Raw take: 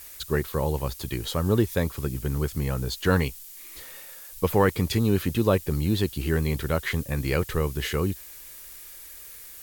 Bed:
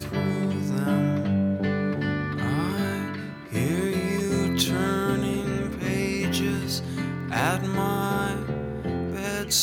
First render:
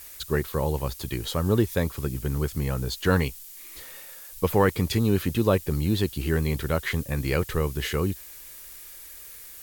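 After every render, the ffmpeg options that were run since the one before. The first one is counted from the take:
-af anull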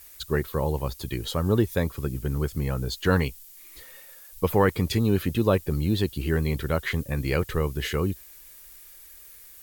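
-af "afftdn=nr=6:nf=-44"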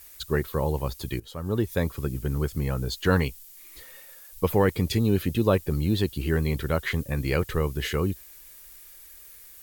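-filter_complex "[0:a]asettb=1/sr,asplit=3[a][b][c];[a]atrim=end=4.524[d];[b]atrim=start=4.52:end=5.47,asetpts=PTS-STARTPTS,afade=t=in:d=0.004:c=qsin,afade=t=out:st=0.946:d=0.004:c=qsin,equalizer=f=1.2k:t=o:w=1:g=-5[e];[c]atrim=start=5.466[f];[d][e]acrossfade=d=0.004:c1=hsin:c2=qsin[g];[g][f]acrossfade=d=0.004:c1=qsin:c2=hsin,asplit=2[h][i];[h]atrim=end=1.2,asetpts=PTS-STARTPTS,afade=t=out:st=1.196:d=0.004:c=hsin:silence=0.112202[j];[i]atrim=start=1.2,asetpts=PTS-STARTPTS,afade=t=in:d=0.64:silence=0.112202[k];[j][k]concat=n=2:v=0:a=1"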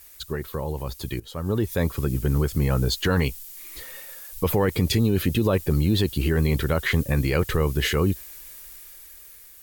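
-af "alimiter=limit=-19.5dB:level=0:latency=1:release=42,dynaudnorm=f=430:g=7:m=7dB"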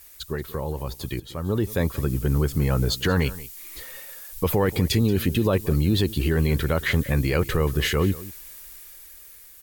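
-af "aecho=1:1:181:0.126"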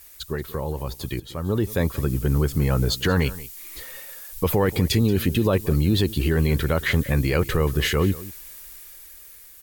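-af "volume=1dB"

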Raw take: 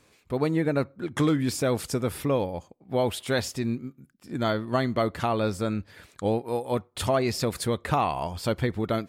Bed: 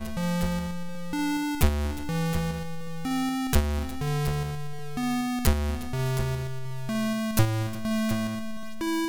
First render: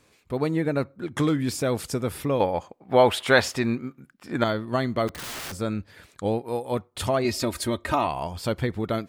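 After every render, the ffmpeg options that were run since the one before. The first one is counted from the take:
-filter_complex "[0:a]asettb=1/sr,asplit=3[a][b][c];[a]atrim=end=2.404[d];[b]atrim=start=2.4:end=4.44,asetpts=PTS-STARTPTS,afade=t=in:d=0.004:c=qsin,afade=t=out:st=2.036:d=0.004:c=qsin,equalizer=f=1.3k:w=0.36:g=12[e];[c]atrim=start=4.436[f];[d][e]acrossfade=d=0.004:c1=hsin:c2=qsin[g];[g][f]acrossfade=d=0.004:c1=qsin:c2=hsin,asplit=3[h][i][j];[h]afade=t=out:st=5.07:d=0.02[k];[i]aeval=exprs='(mod(33.5*val(0)+1,2)-1)/33.5':c=same,afade=t=in:st=5.07:d=0.02,afade=t=out:st=5.51:d=0.02[l];[j]afade=t=in:st=5.51:d=0.02[m];[k][l][m]amix=inputs=3:normalize=0,asettb=1/sr,asplit=3[n][o][p];[n]atrim=end=7.244[q];[o]atrim=start=7.24:end=8.07,asetpts=PTS-STARTPTS,afade=t=in:d=0.004:c=qsin,afade=t=out:st=0.826:d=0.004:c=qsin,aecho=1:1:3.2:0.72,atrim=end_sample=36603[r];[p]atrim=start=8.066[s];[q][r]acrossfade=d=0.004:c1=hsin:c2=qsin[t];[t][s]acrossfade=d=0.004:c1=qsin:c2=hsin"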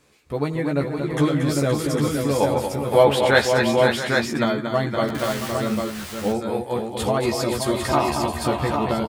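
-filter_complex "[0:a]asplit=2[a][b];[b]adelay=14,volume=-4dB[c];[a][c]amix=inputs=2:normalize=0,asplit=2[d][e];[e]aecho=0:1:85|232|518|673|686|803:0.126|0.447|0.473|0.237|0.15|0.631[f];[d][f]amix=inputs=2:normalize=0"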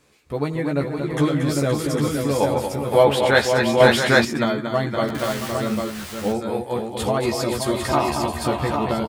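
-filter_complex "[0:a]asettb=1/sr,asplit=3[a][b][c];[a]atrim=end=3.804[d];[b]atrim=start=3.8:end=4.25,asetpts=PTS-STARTPTS,afade=t=in:d=0.004:c=qsin,afade=t=out:st=0.446:d=0.004:c=qsin,acontrast=41[e];[c]atrim=start=4.246[f];[d][e]acrossfade=d=0.004:c1=hsin:c2=qsin[g];[g][f]acrossfade=d=0.004:c1=qsin:c2=hsin"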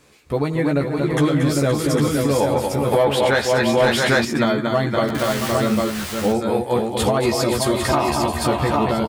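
-af "acontrast=47,alimiter=limit=-9dB:level=0:latency=1:release=279"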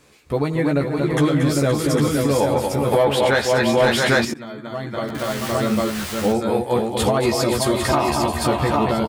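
-filter_complex "[0:a]asplit=2[a][b];[a]atrim=end=4.34,asetpts=PTS-STARTPTS,afade=t=out:st=4.336:d=0.004:c=hsin:silence=0.0891251[c];[b]atrim=start=4.34,asetpts=PTS-STARTPTS,afade=t=in:d=1.56:silence=0.0891251[d];[c][d]concat=n=2:v=0:a=1"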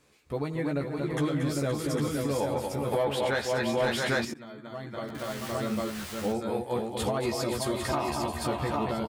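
-af "volume=-10.5dB"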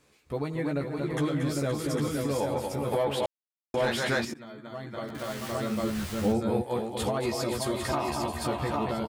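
-filter_complex "[0:a]asettb=1/sr,asplit=3[a][b][c];[a]atrim=end=5.834[d];[b]atrim=start=5.83:end=6.62,asetpts=PTS-STARTPTS,afade=t=in:d=0.004:c=qsin,afade=t=out:st=0.786:d=0.004:c=qsin,lowshelf=f=250:g=10.5[e];[c]atrim=start=6.616[f];[d][e]acrossfade=d=0.004:c1=hsin:c2=qsin[g];[g][f]acrossfade=d=0.004:c1=qsin:c2=hsin,asplit=3[h][i][j];[h]atrim=end=3.26,asetpts=PTS-STARTPTS,afade=t=out:st=3.256:d=0.004:c=hsin[k];[i]atrim=start=3.26:end=3.74,asetpts=PTS-STARTPTS,volume=0[l];[j]atrim=start=3.74,asetpts=PTS-STARTPTS,afade=t=in:d=0.004:c=hsin[m];[k][l][m]concat=n=3:v=0:a=1"

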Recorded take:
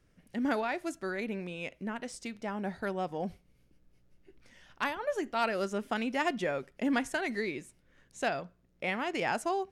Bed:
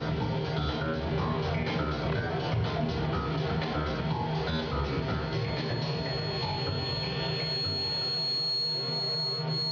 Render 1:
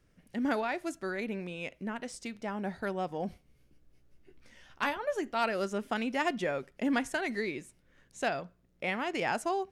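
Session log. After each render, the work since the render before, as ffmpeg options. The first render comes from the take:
-filter_complex "[0:a]asettb=1/sr,asplit=3[a][b][c];[a]atrim=end=3.274[d];[b]atrim=start=3.27:end=4.98,asetpts=PTS-STARTPTS,afade=t=in:d=0.004:c=qsin,afade=t=out:st=1.706:d=0.004:c=qsin,asplit=2[e][f];[f]adelay=14,volume=-6dB[g];[e][g]amix=inputs=2:normalize=0,atrim=end_sample=75411[h];[c]atrim=start=4.976[i];[d][h]acrossfade=d=0.004:c1=hsin:c2=qsin[j];[j][i]acrossfade=d=0.004:c1=qsin:c2=hsin"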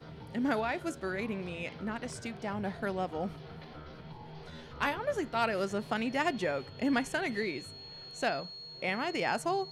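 -filter_complex "[1:a]volume=-17dB[a];[0:a][a]amix=inputs=2:normalize=0"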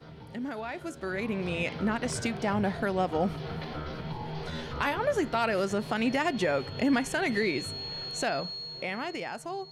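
-af "alimiter=level_in=4dB:limit=-24dB:level=0:latency=1:release=227,volume=-4dB,dynaudnorm=f=200:g=13:m=10.5dB"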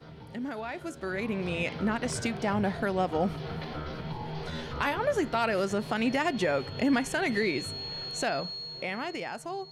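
-af anull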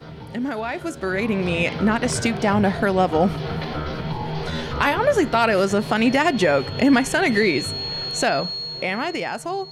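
-af "volume=9.5dB"

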